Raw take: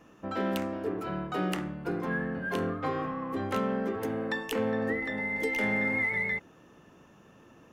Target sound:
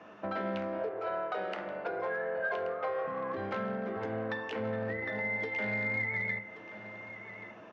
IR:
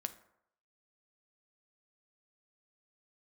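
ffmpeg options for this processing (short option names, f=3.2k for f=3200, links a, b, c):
-filter_complex "[0:a]asettb=1/sr,asplit=3[a][b][c];[a]atrim=end=0.794[d];[b]atrim=start=0.79:end=3.07,asetpts=PTS-STARTPTS,afade=t=in:d=0.004:c=qsin,afade=t=out:st=2.276:d=0.004:c=qsin,lowshelf=f=350:t=q:w=3:g=-11[e];[c]atrim=start=3.066[f];[d][e]acrossfade=d=0.004:c1=hsin:c2=qsin[g];[g][f]acrossfade=d=0.004:c1=qsin:c2=hsin,acrossover=split=140[h][i];[i]acompressor=threshold=-39dB:ratio=10[j];[h][j]amix=inputs=2:normalize=0,aeval=exprs='0.0708*(cos(1*acos(clip(val(0)/0.0708,-1,1)))-cos(1*PI/2))+0.01*(cos(3*acos(clip(val(0)/0.0708,-1,1)))-cos(3*PI/2))':c=same,asoftclip=type=hard:threshold=-38.5dB,highpass=f=100:w=0.5412,highpass=f=100:w=1.3066,equalizer=f=150:t=q:w=4:g=-9,equalizer=f=250:t=q:w=4:g=-5,equalizer=f=650:t=q:w=4:g=9,equalizer=f=970:t=q:w=4:g=4,equalizer=f=1.5k:t=q:w=4:g=6,equalizer=f=2.2k:t=q:w=4:g=5,lowpass=f=4.8k:w=0.5412,lowpass=f=4.8k:w=1.3066,aecho=1:1:1129:0.2[k];[1:a]atrim=start_sample=2205[l];[k][l]afir=irnorm=-1:irlink=0,volume=9dB"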